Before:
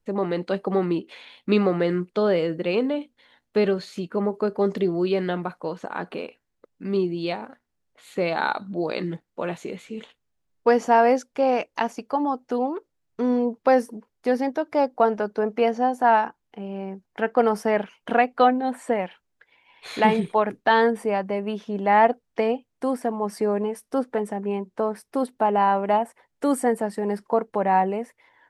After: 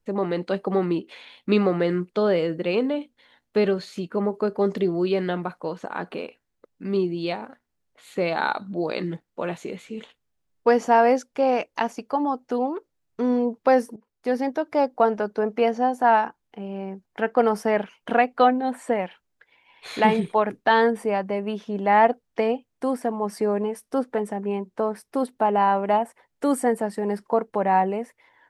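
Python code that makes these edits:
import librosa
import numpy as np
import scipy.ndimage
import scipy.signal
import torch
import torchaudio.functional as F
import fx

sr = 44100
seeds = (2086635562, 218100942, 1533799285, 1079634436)

y = fx.edit(x, sr, fx.fade_in_from(start_s=13.96, length_s=0.63, curve='qsin', floor_db=-15.5), tone=tone)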